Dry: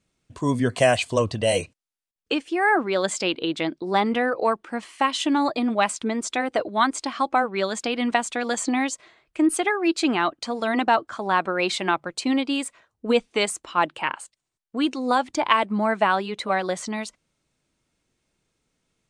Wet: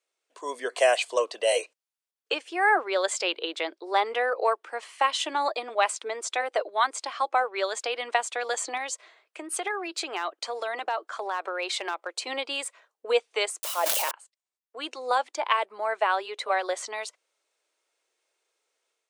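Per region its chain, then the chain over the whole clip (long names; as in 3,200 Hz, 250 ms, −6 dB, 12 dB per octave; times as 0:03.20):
0:08.77–0:12.27: downward compressor 4 to 1, threshold −24 dBFS + hard clipping −18.5 dBFS
0:13.63–0:14.11: spike at every zero crossing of −13 dBFS + parametric band 600 Hz +13.5 dB 0.81 octaves + level that may fall only so fast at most 20 dB per second
whole clip: Butterworth high-pass 410 Hz 36 dB per octave; automatic gain control gain up to 5.5 dB; level −6.5 dB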